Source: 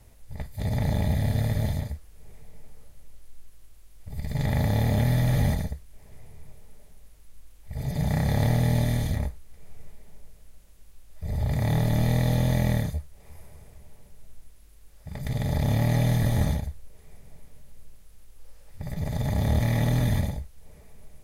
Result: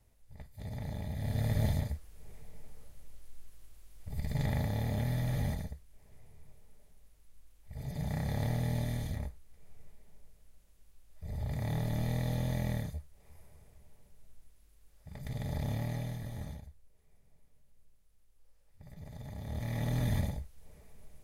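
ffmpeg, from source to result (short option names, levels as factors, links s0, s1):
-af "volume=2.82,afade=t=in:st=1.14:d=0.51:silence=0.281838,afade=t=out:st=4.17:d=0.53:silence=0.446684,afade=t=out:st=15.6:d=0.6:silence=0.398107,afade=t=in:st=19.45:d=0.76:silence=0.251189"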